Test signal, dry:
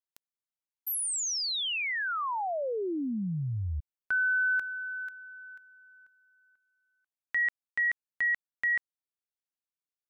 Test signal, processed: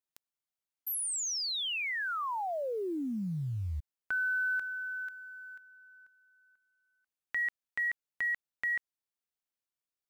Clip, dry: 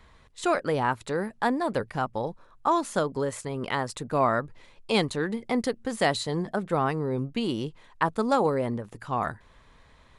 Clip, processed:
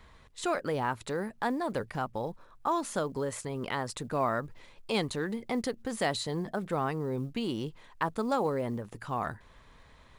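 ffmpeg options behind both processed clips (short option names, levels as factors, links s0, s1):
-filter_complex "[0:a]asplit=2[s0][s1];[s1]acompressor=threshold=0.02:ratio=16:attack=3.3:release=60:knee=6:detection=peak,volume=1.26[s2];[s0][s2]amix=inputs=2:normalize=0,acrusher=bits=9:mode=log:mix=0:aa=0.000001,volume=0.422"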